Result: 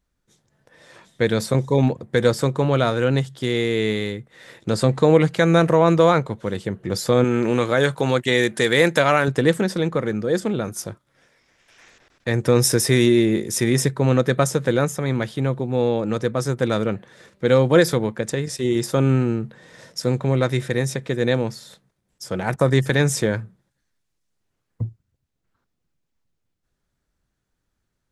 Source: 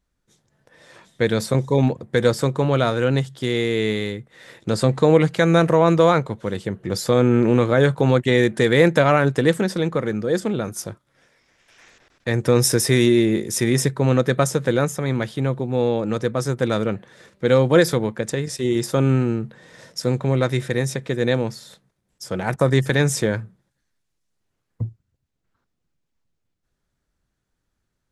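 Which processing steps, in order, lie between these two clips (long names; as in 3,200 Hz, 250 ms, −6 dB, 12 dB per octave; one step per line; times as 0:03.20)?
0:07.24–0:09.28: spectral tilt +2 dB per octave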